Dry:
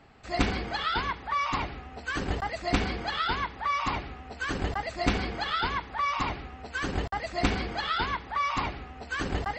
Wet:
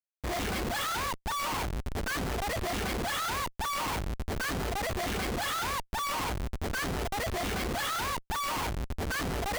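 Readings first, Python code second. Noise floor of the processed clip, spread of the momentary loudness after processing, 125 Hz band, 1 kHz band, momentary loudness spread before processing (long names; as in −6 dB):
−58 dBFS, 4 LU, −1.0 dB, −3.0 dB, 7 LU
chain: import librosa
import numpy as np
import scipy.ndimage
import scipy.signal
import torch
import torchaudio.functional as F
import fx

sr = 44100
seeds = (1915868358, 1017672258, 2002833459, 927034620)

y = fx.dereverb_blind(x, sr, rt60_s=0.81)
y = fx.schmitt(y, sr, flips_db=-42.5)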